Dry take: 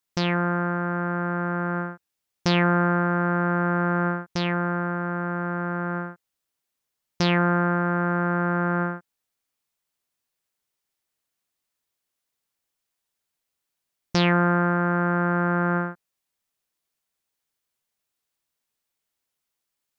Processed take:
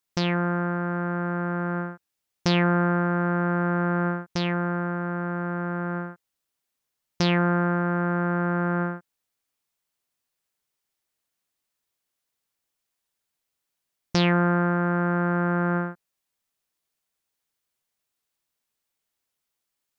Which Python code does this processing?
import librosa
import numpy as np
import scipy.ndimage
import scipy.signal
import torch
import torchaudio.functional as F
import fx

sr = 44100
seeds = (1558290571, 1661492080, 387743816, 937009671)

y = fx.dynamic_eq(x, sr, hz=1300.0, q=0.7, threshold_db=-34.0, ratio=4.0, max_db=-3)